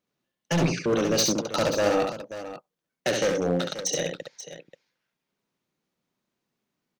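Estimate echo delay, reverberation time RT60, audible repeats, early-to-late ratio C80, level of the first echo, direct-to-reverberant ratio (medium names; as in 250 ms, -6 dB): 68 ms, no reverb, 2, no reverb, -4.0 dB, no reverb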